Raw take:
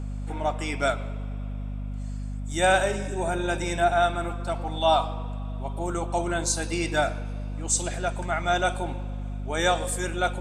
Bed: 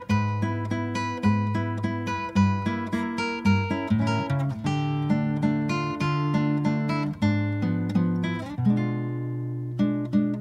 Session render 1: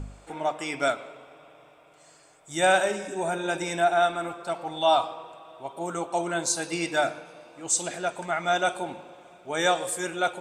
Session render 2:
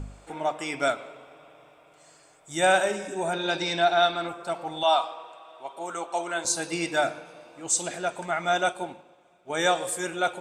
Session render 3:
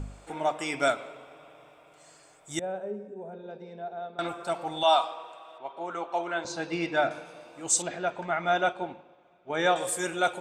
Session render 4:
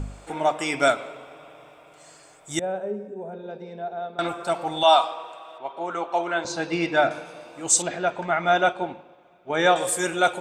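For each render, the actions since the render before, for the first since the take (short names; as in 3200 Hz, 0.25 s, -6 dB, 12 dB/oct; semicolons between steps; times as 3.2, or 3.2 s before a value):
de-hum 50 Hz, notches 7
3.33–4.29 synth low-pass 4400 Hz, resonance Q 6.6; 4.83–6.45 weighting filter A; 8.68–9.5 upward expander, over -49 dBFS
2.59–4.19 double band-pass 310 Hz, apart 0.96 oct; 5.58–7.11 air absorption 200 m; 7.82–9.76 air absorption 190 m
gain +5.5 dB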